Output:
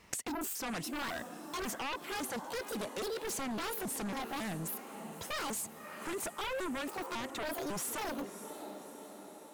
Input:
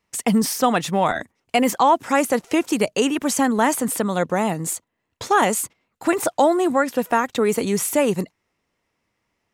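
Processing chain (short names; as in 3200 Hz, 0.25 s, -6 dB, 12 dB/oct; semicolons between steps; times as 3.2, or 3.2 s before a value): trilling pitch shifter +7 st, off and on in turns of 0.275 s; limiter -11.5 dBFS, peak gain reduction 6 dB; diffused feedback echo 0.595 s, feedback 59%, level -15 dB; sine folder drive 10 dB, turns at -10 dBFS; flipped gate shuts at -21 dBFS, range -24 dB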